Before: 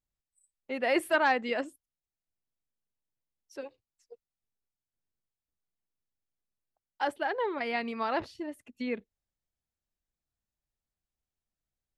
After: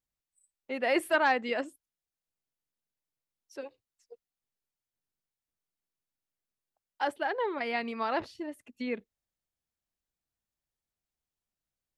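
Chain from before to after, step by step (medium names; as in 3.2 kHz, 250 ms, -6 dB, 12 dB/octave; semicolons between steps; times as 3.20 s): bass shelf 93 Hz -6.5 dB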